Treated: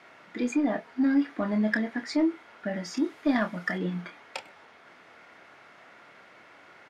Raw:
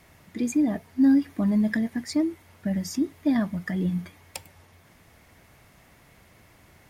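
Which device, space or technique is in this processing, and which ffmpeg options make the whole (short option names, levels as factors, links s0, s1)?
intercom: -filter_complex "[0:a]highpass=370,lowpass=3600,equalizer=f=1400:t=o:w=0.23:g=8.5,asoftclip=type=tanh:threshold=0.106,asplit=2[s0][s1];[s1]adelay=28,volume=0.398[s2];[s0][s2]amix=inputs=2:normalize=0,asettb=1/sr,asplit=3[s3][s4][s5];[s3]atrim=end=2.974[s6];[s4]atrim=start=2.97:end=3.78,asetpts=PTS-STARTPTS,afade=t=in:d=0.004:c=qsin,afade=t=out:st=0.806:d=0.004:c=qsin,highshelf=f=6700:g=12[s7];[s5]atrim=start=3.776[s8];[s6][s7]acrossfade=d=0.004:c1=hsin:c2=qsin[s9];[s9][s8]acrossfade=d=0.004:c1=qsin:c2=hsin,volume=1.68"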